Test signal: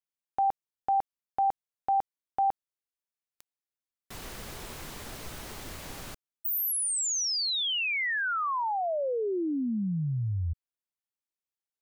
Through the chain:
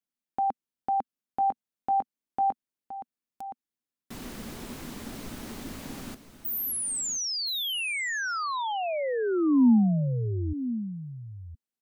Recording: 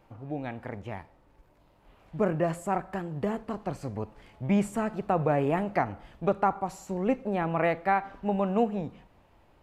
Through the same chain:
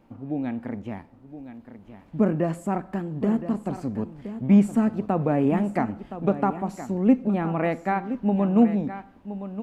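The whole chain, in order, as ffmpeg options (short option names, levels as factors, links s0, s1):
-filter_complex "[0:a]equalizer=f=240:w=1.6:g=14,asplit=2[s0][s1];[s1]aecho=0:1:1019:0.251[s2];[s0][s2]amix=inputs=2:normalize=0,volume=0.841"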